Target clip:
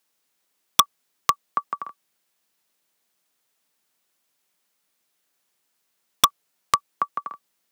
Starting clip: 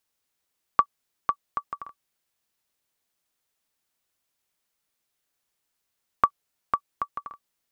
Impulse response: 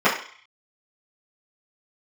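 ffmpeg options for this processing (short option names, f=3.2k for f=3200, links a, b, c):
-filter_complex "[0:a]highpass=f=140:w=0.5412,highpass=f=140:w=1.3066,acrossover=split=250[a][b];[b]aeval=exprs='(mod(3.35*val(0)+1,2)-1)/3.35':c=same[c];[a][c]amix=inputs=2:normalize=0,volume=6dB"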